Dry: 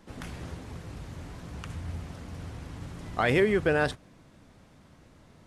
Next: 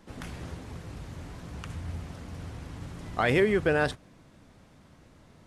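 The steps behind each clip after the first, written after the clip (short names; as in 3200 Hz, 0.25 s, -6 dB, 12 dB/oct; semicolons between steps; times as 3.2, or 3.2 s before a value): nothing audible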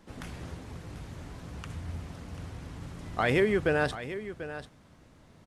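echo 0.74 s -12.5 dB; gain -1.5 dB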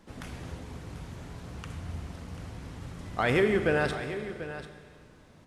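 Schroeder reverb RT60 2.1 s, combs from 33 ms, DRR 7.5 dB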